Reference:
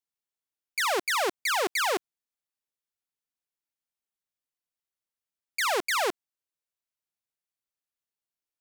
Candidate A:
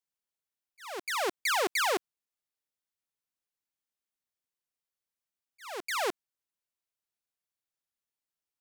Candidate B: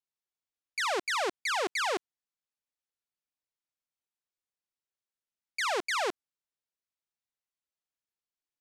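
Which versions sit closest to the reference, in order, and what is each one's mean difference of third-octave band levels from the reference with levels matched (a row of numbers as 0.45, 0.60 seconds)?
B, A; 2.0, 4.0 decibels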